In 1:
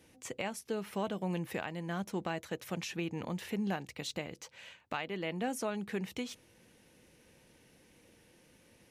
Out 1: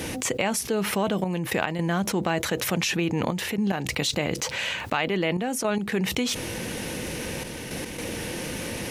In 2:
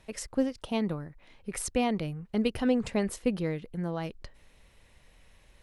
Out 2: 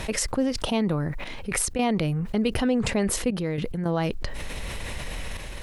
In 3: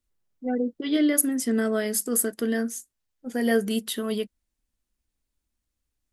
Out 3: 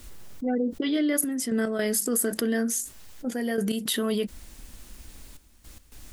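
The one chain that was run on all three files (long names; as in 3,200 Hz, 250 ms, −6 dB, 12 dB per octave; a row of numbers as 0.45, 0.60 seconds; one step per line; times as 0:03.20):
gate pattern "xxxxxxxxx..x.xx" 109 BPM −12 dB
envelope flattener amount 70%
loudness normalisation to −27 LKFS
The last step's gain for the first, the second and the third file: +9.0, +1.0, −5.0 decibels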